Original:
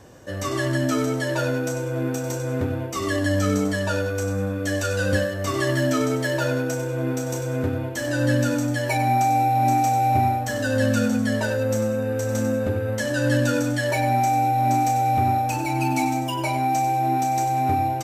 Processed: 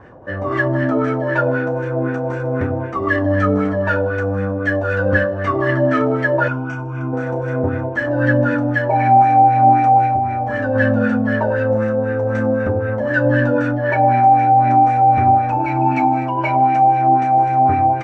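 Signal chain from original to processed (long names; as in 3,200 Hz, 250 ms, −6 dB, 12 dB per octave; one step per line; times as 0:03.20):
on a send: delay with a high-pass on its return 155 ms, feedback 61%, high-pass 1,900 Hz, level −10 dB
on the sum: auto-filter low-pass sine 3.9 Hz 750–1,900 Hz
0:06.48–0:07.13: phaser with its sweep stopped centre 2,700 Hz, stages 8
0:10.05–0:10.75: downward compressor 6 to 1, threshold −19 dBFS, peak gain reduction 8 dB
0:13.71–0:14.11: low-pass filter 3,900 Hz 6 dB per octave
level +4 dB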